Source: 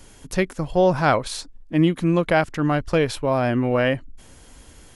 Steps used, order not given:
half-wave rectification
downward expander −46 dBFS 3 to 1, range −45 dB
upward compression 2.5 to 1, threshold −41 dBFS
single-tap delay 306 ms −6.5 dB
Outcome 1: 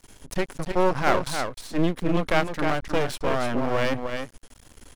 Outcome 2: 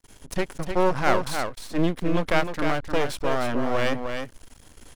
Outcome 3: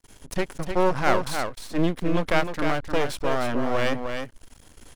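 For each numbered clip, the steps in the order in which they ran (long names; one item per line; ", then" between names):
downward expander, then single-tap delay, then upward compression, then half-wave rectification
upward compression, then half-wave rectification, then single-tap delay, then downward expander
upward compression, then half-wave rectification, then downward expander, then single-tap delay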